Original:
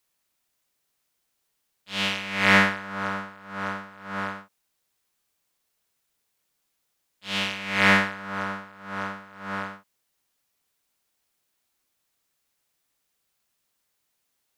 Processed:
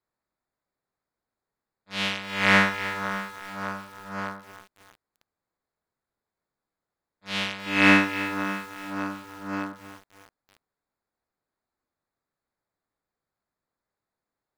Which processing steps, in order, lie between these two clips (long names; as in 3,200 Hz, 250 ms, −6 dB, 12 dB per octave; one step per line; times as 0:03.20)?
adaptive Wiener filter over 15 samples
0:07.66–0:09.73: hollow resonant body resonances 300/2,600 Hz, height 16 dB, ringing for 85 ms
feedback echo at a low word length 314 ms, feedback 55%, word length 6 bits, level −12 dB
level −1 dB